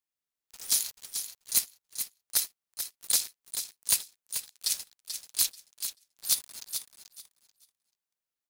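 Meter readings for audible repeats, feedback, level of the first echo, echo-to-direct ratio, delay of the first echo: 2, 20%, -8.5 dB, -8.5 dB, 0.436 s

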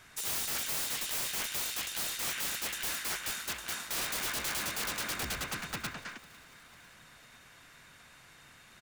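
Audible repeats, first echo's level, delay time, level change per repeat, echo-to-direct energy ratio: 3, -22.0 dB, 0.499 s, -5.5 dB, -20.5 dB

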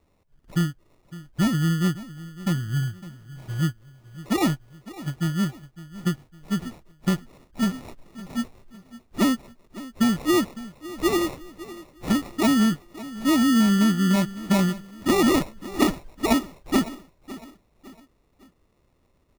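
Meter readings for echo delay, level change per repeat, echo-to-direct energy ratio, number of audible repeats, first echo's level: 0.557 s, -8.0 dB, -16.5 dB, 3, -17.0 dB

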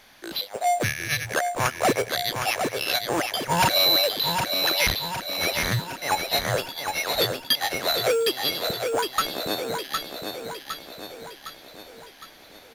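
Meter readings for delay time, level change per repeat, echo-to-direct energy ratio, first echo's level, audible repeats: 0.76 s, -5.5 dB, -4.0 dB, -5.5 dB, 6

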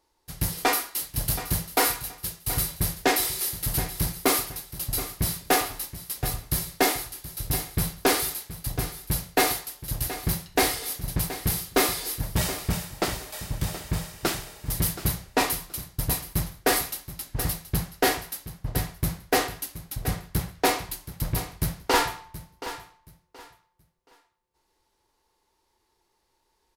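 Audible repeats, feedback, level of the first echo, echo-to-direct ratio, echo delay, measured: 2, 25%, -13.5 dB, -13.0 dB, 0.725 s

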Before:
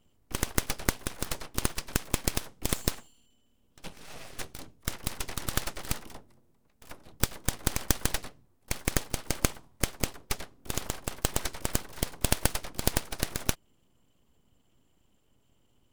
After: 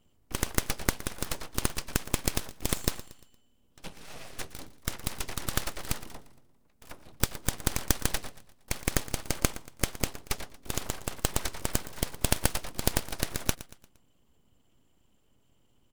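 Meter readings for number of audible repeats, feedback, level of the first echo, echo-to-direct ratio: 3, 44%, -17.0 dB, -16.0 dB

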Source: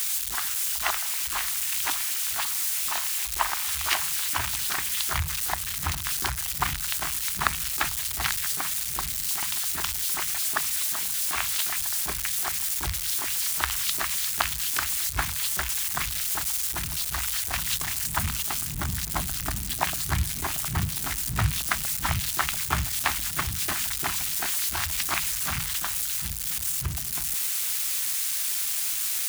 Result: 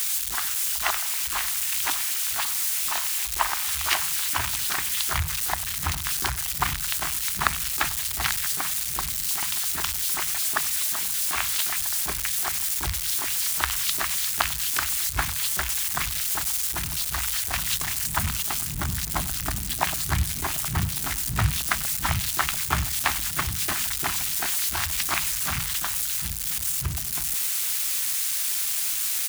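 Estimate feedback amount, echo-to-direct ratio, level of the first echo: no steady repeat, -20.0 dB, -20.0 dB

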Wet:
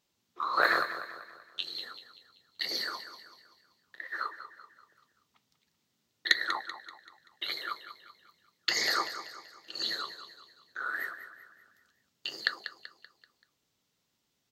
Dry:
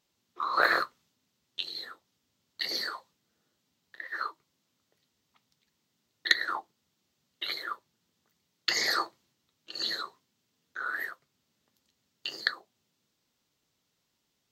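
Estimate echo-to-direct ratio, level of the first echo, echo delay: -10.5 dB, -11.5 dB, 0.192 s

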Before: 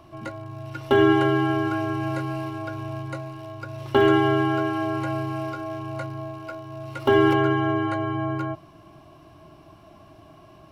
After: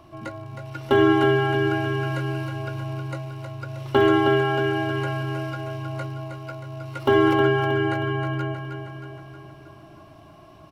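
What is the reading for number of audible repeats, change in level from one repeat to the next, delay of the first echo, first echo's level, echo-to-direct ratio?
6, -5.0 dB, 0.315 s, -7.0 dB, -5.5 dB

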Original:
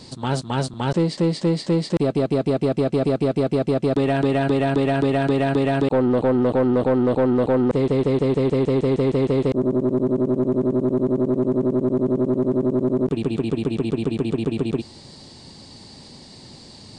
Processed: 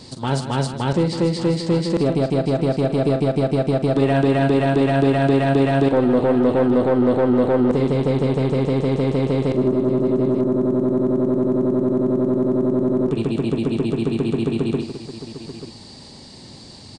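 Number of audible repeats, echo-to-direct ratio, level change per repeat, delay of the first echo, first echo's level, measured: 3, -6.5 dB, no steady repeat, 44 ms, -10.5 dB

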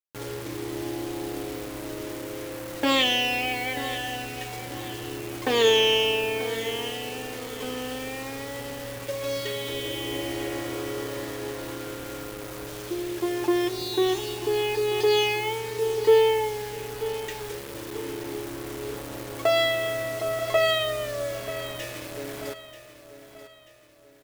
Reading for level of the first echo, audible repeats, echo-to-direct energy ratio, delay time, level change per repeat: -13.5 dB, 3, -12.5 dB, 0.936 s, -7.5 dB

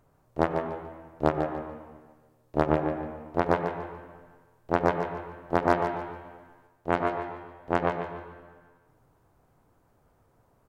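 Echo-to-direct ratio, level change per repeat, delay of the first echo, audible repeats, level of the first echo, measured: -7.5 dB, -11.5 dB, 0.145 s, 3, -8.0 dB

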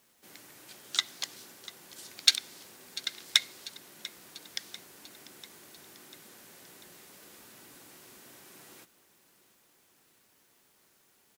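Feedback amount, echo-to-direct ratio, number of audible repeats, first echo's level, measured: 59%, -16.0 dB, 4, -18.0 dB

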